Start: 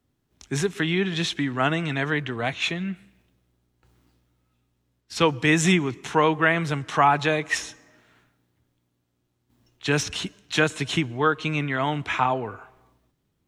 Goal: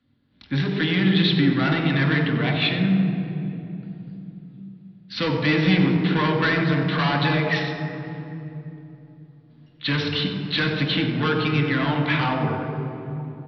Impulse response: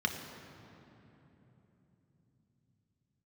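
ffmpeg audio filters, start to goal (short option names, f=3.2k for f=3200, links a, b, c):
-filter_complex "[0:a]aresample=11025,asoftclip=type=tanh:threshold=-22dB,aresample=44100,asplit=2[a][b];[b]adelay=93.29,volume=-11dB,highshelf=f=4k:g=-2.1[c];[a][c]amix=inputs=2:normalize=0[d];[1:a]atrim=start_sample=2205,asetrate=52920,aresample=44100[e];[d][e]afir=irnorm=-1:irlink=0"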